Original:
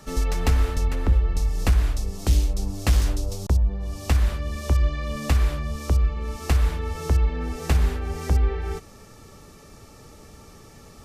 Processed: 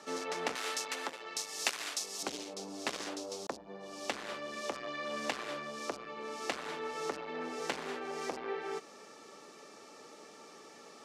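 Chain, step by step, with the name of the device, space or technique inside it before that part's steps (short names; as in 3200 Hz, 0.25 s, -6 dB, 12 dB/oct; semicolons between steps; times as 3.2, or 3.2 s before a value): HPF 230 Hz 12 dB/oct; public-address speaker with an overloaded transformer (core saturation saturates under 1900 Hz; BPF 290–6900 Hz); 0.55–2.23 tilt +4 dB/oct; gain -2 dB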